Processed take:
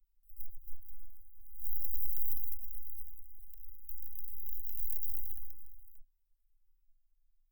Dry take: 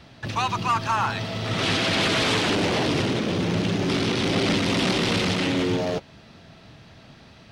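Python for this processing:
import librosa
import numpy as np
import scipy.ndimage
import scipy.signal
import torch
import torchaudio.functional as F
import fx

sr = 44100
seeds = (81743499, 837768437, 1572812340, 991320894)

y = fx.tracing_dist(x, sr, depth_ms=0.14)
y = fx.vibrato(y, sr, rate_hz=0.66, depth_cents=51.0)
y = scipy.signal.sosfilt(scipy.signal.cheby2(4, 80, [110.0, 5300.0], 'bandstop', fs=sr, output='sos'), y)
y = y * librosa.db_to_amplitude(7.0)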